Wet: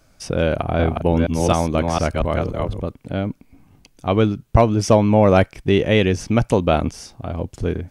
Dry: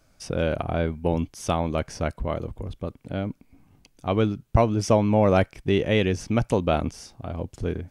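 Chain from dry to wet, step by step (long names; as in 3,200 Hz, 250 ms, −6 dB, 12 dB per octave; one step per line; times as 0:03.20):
0:00.55–0:02.81: delay that plays each chunk backwards 239 ms, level −2 dB
hard clipping −9 dBFS, distortion −33 dB
level +5.5 dB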